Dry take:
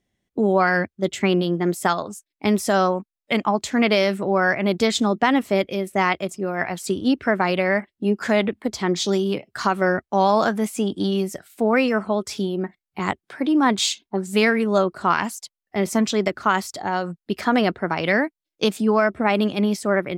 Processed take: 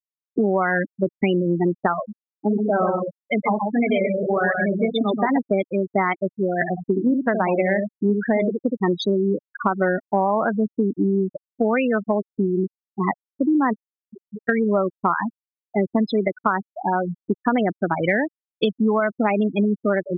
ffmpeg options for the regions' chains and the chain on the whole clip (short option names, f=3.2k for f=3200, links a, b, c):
-filter_complex "[0:a]asettb=1/sr,asplit=3[a][b][c];[a]atrim=end=2.124[d];[b]atrim=start=2.12:end=5.38,asetpts=PTS-STARTPTS,afade=t=in:d=0.004:c=qsin,afade=t=out:st=3.256:d=0.004:c=qsin,flanger=delay=6.5:depth=8.7:regen=-45:speed=1.7:shape=sinusoidal,aecho=1:1:129|258|387:0.631|0.151|0.0363,atrim=end_sample=143766[e];[c]atrim=start=5.376[f];[d][e]acrossfade=d=0.004:c1=hsin:c2=qsin[g];[g][f]acrossfade=d=0.004:c1=qsin:c2=hsin,asettb=1/sr,asplit=3[h][i][j];[h]atrim=end=6.554[k];[i]atrim=start=6.55:end=8.77,asetpts=PTS-STARTPTS,afade=t=in:d=0.004:c=qsin,afade=t=out:st=2.216:d=0.004:c=qsin,highpass=48,highshelf=f=5.7k:g=-8.5,asplit=2[l][m];[m]adelay=69,lowpass=f=850:p=1,volume=-4dB,asplit=2[n][o];[o]adelay=69,lowpass=f=850:p=1,volume=0.17,asplit=2[p][q];[q]adelay=69,lowpass=f=850:p=1,volume=0.17[r];[l][n][p][r]amix=inputs=4:normalize=0,atrim=end_sample=97902[s];[j]atrim=start=8.766[t];[k][s]acrossfade=d=0.004:c1=hsin:c2=qsin[u];[u][t]acrossfade=d=0.004:c1=qsin:c2=hsin,asettb=1/sr,asplit=3[v][w][x];[v]atrim=end=13.734[y];[w]atrim=start=13.73:end=14.49,asetpts=PTS-STARTPTS,afade=t=in:d=0.004:c=qsin,afade=t=out:st=0.756:d=0.004:c=qsin,bass=f=250:g=1,treble=f=4k:g=6,acompressor=threshold=-31dB:ratio=20:attack=3.2:release=140:knee=1:detection=peak[z];[x]atrim=start=14.486[aa];[y][z]acrossfade=d=0.004:c1=hsin:c2=qsin[ab];[ab][aa]acrossfade=d=0.004:c1=qsin:c2=hsin,afftfilt=real='re*gte(hypot(re,im),0.178)':imag='im*gte(hypot(re,im),0.178)':win_size=1024:overlap=0.75,acompressor=threshold=-21dB:ratio=6,volume=5dB"